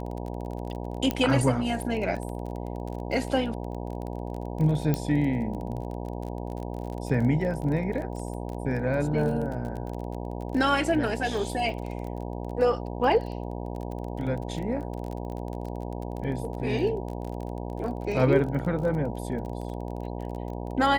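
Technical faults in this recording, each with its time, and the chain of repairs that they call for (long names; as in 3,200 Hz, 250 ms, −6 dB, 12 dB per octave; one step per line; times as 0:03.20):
mains buzz 60 Hz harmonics 16 −34 dBFS
surface crackle 26 per second −33 dBFS
0:01.11: click −12 dBFS
0:04.94: click −13 dBFS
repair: click removal
hum removal 60 Hz, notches 16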